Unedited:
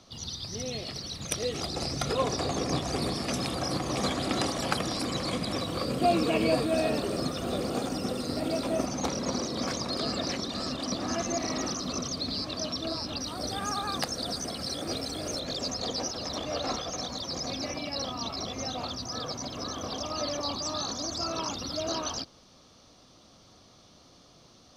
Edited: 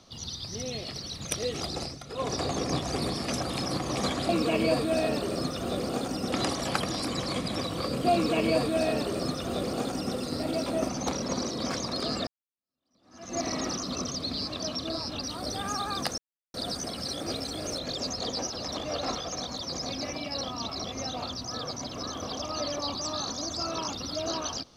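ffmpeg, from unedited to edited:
ffmpeg -i in.wav -filter_complex "[0:a]asplit=9[link_01][link_02][link_03][link_04][link_05][link_06][link_07][link_08][link_09];[link_01]atrim=end=2,asetpts=PTS-STARTPTS,afade=type=out:start_time=1.75:duration=0.25:silence=0.211349[link_10];[link_02]atrim=start=2:end=2.09,asetpts=PTS-STARTPTS,volume=-13.5dB[link_11];[link_03]atrim=start=2.09:end=3.382,asetpts=PTS-STARTPTS,afade=type=in:duration=0.25:silence=0.211349[link_12];[link_04]atrim=start=3.378:end=3.662,asetpts=PTS-STARTPTS,areverse[link_13];[link_05]atrim=start=3.658:end=4.292[link_14];[link_06]atrim=start=6.098:end=8.132[link_15];[link_07]atrim=start=4.288:end=10.24,asetpts=PTS-STARTPTS,afade=type=out:start_time=5.948:duration=0.004:curve=hsin[link_16];[link_08]atrim=start=10.24:end=14.15,asetpts=PTS-STARTPTS,afade=type=in:duration=1.11:curve=exp,afade=type=out:start_time=3.906:duration=0.004:curve=hsin,apad=pad_dur=0.36[link_17];[link_09]atrim=start=14.15,asetpts=PTS-STARTPTS,afade=type=in:duration=0.004:curve=hsin[link_18];[link_10][link_11][link_12]concat=n=3:v=0:a=1[link_19];[link_19][link_13]acrossfade=duration=0.004:curve1=hsin:curve2=hsin[link_20];[link_20][link_14]acrossfade=duration=0.004:curve1=hsin:curve2=hsin[link_21];[link_21][link_15]acrossfade=duration=0.004:curve1=hsin:curve2=hsin[link_22];[link_16][link_17][link_18]concat=n=3:v=0:a=1[link_23];[link_22][link_23]acrossfade=duration=0.004:curve1=hsin:curve2=hsin" out.wav

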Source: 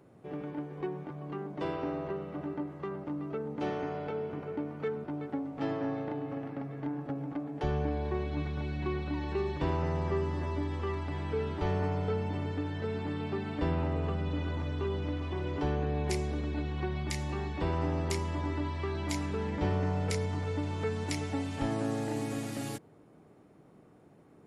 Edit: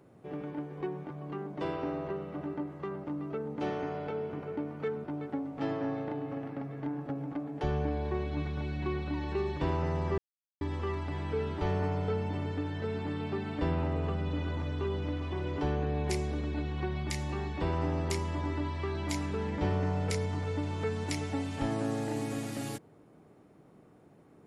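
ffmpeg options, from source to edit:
ffmpeg -i in.wav -filter_complex "[0:a]asplit=3[link_01][link_02][link_03];[link_01]atrim=end=10.18,asetpts=PTS-STARTPTS,afade=type=out:start_time=10.176:duration=0.004:curve=hsin[link_04];[link_02]atrim=start=10.18:end=10.61,asetpts=PTS-STARTPTS,volume=0[link_05];[link_03]atrim=start=10.61,asetpts=PTS-STARTPTS,afade=type=in:duration=0.004:curve=hsin[link_06];[link_04][link_05][link_06]concat=n=3:v=0:a=1" out.wav

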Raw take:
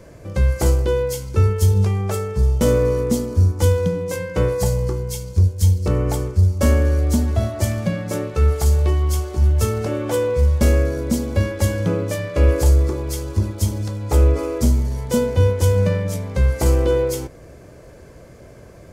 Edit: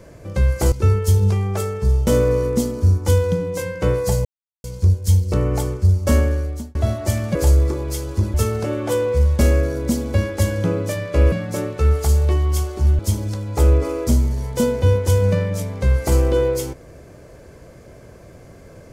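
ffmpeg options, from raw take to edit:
ffmpeg -i in.wav -filter_complex "[0:a]asplit=9[link_01][link_02][link_03][link_04][link_05][link_06][link_07][link_08][link_09];[link_01]atrim=end=0.722[link_10];[link_02]atrim=start=1.258:end=4.79,asetpts=PTS-STARTPTS,afade=type=out:start_time=3.528:duration=0.004:curve=hsin[link_11];[link_03]atrim=start=4.79:end=5.18,asetpts=PTS-STARTPTS,volume=0[link_12];[link_04]atrim=start=5.18:end=7.29,asetpts=PTS-STARTPTS,afade=type=in:duration=0.004:curve=hsin,afade=type=out:start_time=1.51:duration=0.6[link_13];[link_05]atrim=start=7.29:end=7.892,asetpts=PTS-STARTPTS,afade=type=in:duration=0.004:curve=hsin[link_14];[link_06]atrim=start=12.538:end=13.532[link_15];[link_07]atrim=start=9.558:end=12.542[link_16];[link_08]atrim=start=7.888:end=9.562[link_17];[link_09]atrim=start=13.528[link_18];[link_11][link_12][link_13][link_14]concat=n=4:v=0:a=1[link_19];[link_10][link_19]acrossfade=duration=0.004:curve1=hsin:curve2=hsin[link_20];[link_20][link_15]acrossfade=duration=0.004:curve1=hsin:curve2=hsin[link_21];[link_21][link_16]acrossfade=duration=0.004:curve1=hsin:curve2=hsin[link_22];[link_22][link_17]acrossfade=duration=0.004:curve1=hsin:curve2=hsin[link_23];[link_23][link_18]acrossfade=duration=0.004:curve1=hsin:curve2=hsin" out.wav

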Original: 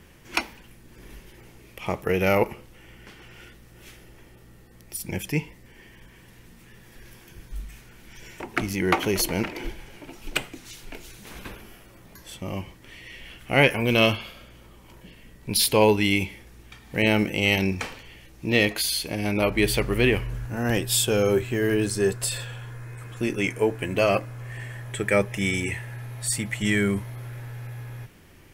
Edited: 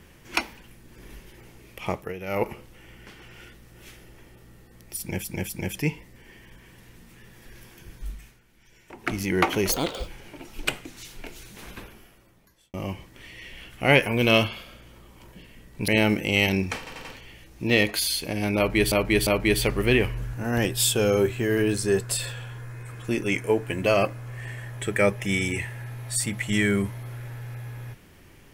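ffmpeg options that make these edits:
ffmpeg -i in.wav -filter_complex "[0:a]asplit=16[link_01][link_02][link_03][link_04][link_05][link_06][link_07][link_08][link_09][link_10][link_11][link_12][link_13][link_14][link_15][link_16];[link_01]atrim=end=2.14,asetpts=PTS-STARTPTS,afade=type=out:start_time=1.89:duration=0.25:silence=0.211349[link_17];[link_02]atrim=start=2.14:end=2.27,asetpts=PTS-STARTPTS,volume=-13.5dB[link_18];[link_03]atrim=start=2.27:end=5.242,asetpts=PTS-STARTPTS,afade=type=in:duration=0.25:silence=0.211349[link_19];[link_04]atrim=start=4.988:end=5.242[link_20];[link_05]atrim=start=4.988:end=7.92,asetpts=PTS-STARTPTS,afade=type=out:start_time=2.602:duration=0.33:silence=0.237137[link_21];[link_06]atrim=start=7.92:end=8.36,asetpts=PTS-STARTPTS,volume=-12.5dB[link_22];[link_07]atrim=start=8.36:end=9.224,asetpts=PTS-STARTPTS,afade=type=in:duration=0.33:silence=0.237137[link_23];[link_08]atrim=start=9.22:end=9.76,asetpts=PTS-STARTPTS,asetrate=66591,aresample=44100[link_24];[link_09]atrim=start=9.756:end=12.42,asetpts=PTS-STARTPTS,afade=type=out:start_time=1.444:duration=1.22[link_25];[link_10]atrim=start=12.42:end=15.562,asetpts=PTS-STARTPTS,afade=type=in:duration=0.004:curve=hsin[link_26];[link_11]atrim=start=16.968:end=17.962[link_27];[link_12]atrim=start=17.868:end=17.962[link_28];[link_13]atrim=start=17.868:end=17.962[link_29];[link_14]atrim=start=17.868:end=19.742[link_30];[link_15]atrim=start=19.388:end=19.742[link_31];[link_16]atrim=start=19.388[link_32];[link_17][link_18][link_19]concat=n=3:v=0:a=1[link_33];[link_33][link_20]acrossfade=duration=0.004:curve1=hsin:curve2=hsin[link_34];[link_21][link_22][link_23]concat=n=3:v=0:a=1[link_35];[link_34][link_35]acrossfade=duration=0.004:curve1=hsin:curve2=hsin[link_36];[link_36][link_24]acrossfade=duration=0.004:curve1=hsin:curve2=hsin[link_37];[link_25][link_26]concat=n=2:v=0:a=1[link_38];[link_37][link_38]acrossfade=duration=0.004:curve1=hsin:curve2=hsin[link_39];[link_39][link_27]acrossfade=duration=0.004:curve1=hsin:curve2=hsin[link_40];[link_40][link_28]acrossfade=duration=0.004:curve1=hsin:curve2=hsin[link_41];[link_41][link_29]acrossfade=duration=0.004:curve1=hsin:curve2=hsin[link_42];[link_42][link_30]acrossfade=duration=0.004:curve1=hsin:curve2=hsin[link_43];[link_43][link_31]acrossfade=duration=0.004:curve1=hsin:curve2=hsin[link_44];[link_44][link_32]acrossfade=duration=0.004:curve1=hsin:curve2=hsin" out.wav

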